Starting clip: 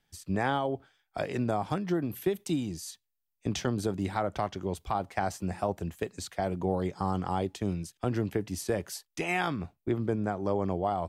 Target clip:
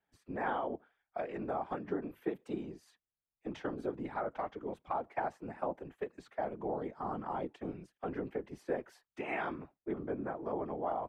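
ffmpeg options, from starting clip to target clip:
-filter_complex "[0:a]afftfilt=real='hypot(re,im)*cos(2*PI*random(0))':imag='hypot(re,im)*sin(2*PI*random(1))':win_size=512:overlap=0.75,acrossover=split=240 2400:gain=0.2 1 0.0708[s0][s1][s2];[s0][s1][s2]amix=inputs=3:normalize=0,volume=1.12"

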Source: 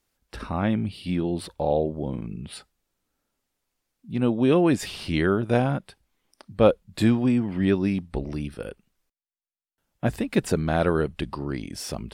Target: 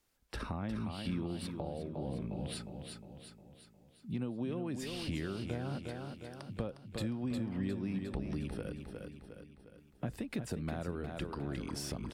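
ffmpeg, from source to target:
-filter_complex "[0:a]acompressor=threshold=0.0224:ratio=4,aecho=1:1:357|714|1071|1428|1785|2142:0.447|0.228|0.116|0.0593|0.0302|0.0154,acrossover=split=240[s0][s1];[s1]acompressor=threshold=0.0141:ratio=6[s2];[s0][s2]amix=inputs=2:normalize=0,volume=0.794"

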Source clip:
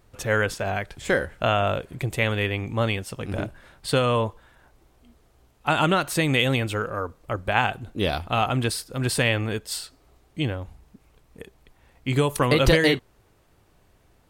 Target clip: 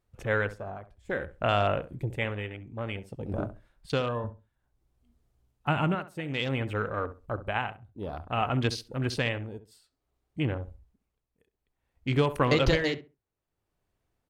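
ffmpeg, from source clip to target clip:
-filter_complex "[0:a]tremolo=f=0.57:d=0.7,afwtdn=0.0178,asettb=1/sr,asplit=3[s0][s1][s2];[s0]atrim=end=4.244[s3];[s1]atrim=start=4.24:end=5.95,asetpts=PTS-STARTPTS,afade=t=in:d=0.004:c=qsin,afade=t=out:st=1.706:d=0.004:c=qsin,bass=f=250:g=9,treble=f=4000:g=3[s4];[s2]atrim=start=5.946[s5];[s3][s4]acrossfade=d=0.004:c1=hsin:c2=qsin[s6];[s6][s5]acrossfade=d=0.004:c1=qsin:c2=hsin,asplit=2[s7][s8];[s8]adelay=67,lowpass=f=1500:p=1,volume=0.224,asplit=2[s9][s10];[s10]adelay=67,lowpass=f=1500:p=1,volume=0.22,asplit=2[s11][s12];[s12]adelay=67,lowpass=f=1500:p=1,volume=0.22[s13];[s7][s9][s11][s13]amix=inputs=4:normalize=0,volume=0.75"

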